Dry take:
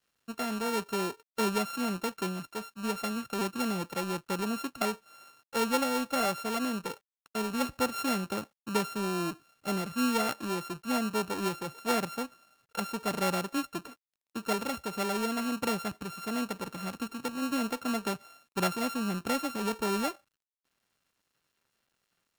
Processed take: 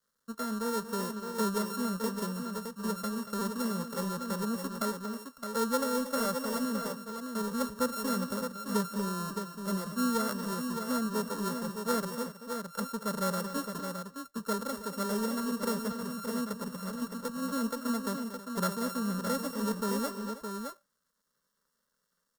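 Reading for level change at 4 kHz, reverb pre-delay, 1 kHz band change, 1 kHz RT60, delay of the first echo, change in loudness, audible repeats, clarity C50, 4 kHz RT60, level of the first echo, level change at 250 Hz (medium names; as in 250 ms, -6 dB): -3.5 dB, no reverb, -2.0 dB, no reverb, 234 ms, -1.5 dB, 3, no reverb, no reverb, -12.0 dB, 0.0 dB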